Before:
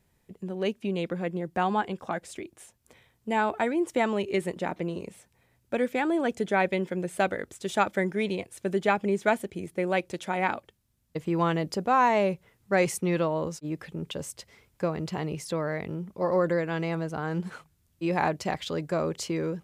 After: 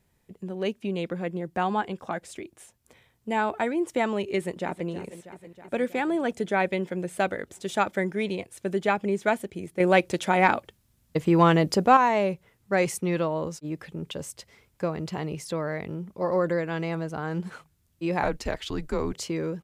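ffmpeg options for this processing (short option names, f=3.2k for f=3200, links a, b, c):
-filter_complex "[0:a]asplit=2[a][b];[b]afade=t=in:st=4.36:d=0.01,afade=t=out:st=4.88:d=0.01,aecho=0:1:320|640|960|1280|1600|1920|2240|2560|2880|3200|3520:0.211349|0.158512|0.118884|0.0891628|0.0668721|0.0501541|0.0376156|0.0282117|0.0211588|0.0158691|0.0119018[c];[a][c]amix=inputs=2:normalize=0,asettb=1/sr,asplit=3[d][e][f];[d]atrim=end=9.804[g];[e]atrim=start=9.8:end=11.97,asetpts=PTS-STARTPTS,afade=t=in:d=0.004:c=qsin,afade=t=out:st=2.166:d=0.004:c=qsin,acontrast=87[h];[f]atrim=start=11.966[i];[g][h]acrossfade=d=0.004:c1=hsin:c2=qsin[j];[j][i]acrossfade=d=0.004:c1=qsin:c2=hsin,asettb=1/sr,asplit=3[k][l][m];[k]atrim=end=18.234[n];[l]atrim=start=18.23:end=19.13,asetpts=PTS-STARTPTS,afade=t=in:d=0.004:c=qsin,afade=t=out:st=0.896:d=0.004:c=qsin,afreqshift=-140[o];[m]atrim=start=19.126[p];[n][o]acrossfade=d=0.004:c1=hsin:c2=qsin[q];[q][p]acrossfade=d=0.004:c1=qsin:c2=hsin"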